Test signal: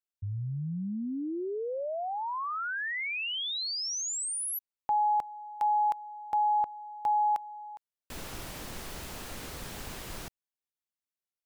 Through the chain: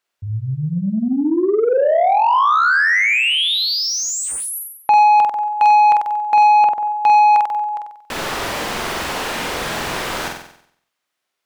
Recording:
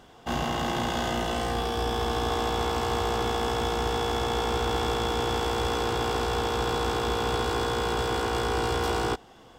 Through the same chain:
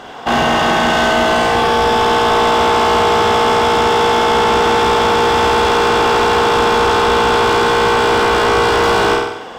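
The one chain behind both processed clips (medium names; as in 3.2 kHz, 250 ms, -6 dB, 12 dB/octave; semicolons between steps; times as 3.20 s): flutter echo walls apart 8 m, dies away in 0.65 s; overdrive pedal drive 21 dB, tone 2.1 kHz, clips at -12 dBFS; trim +8 dB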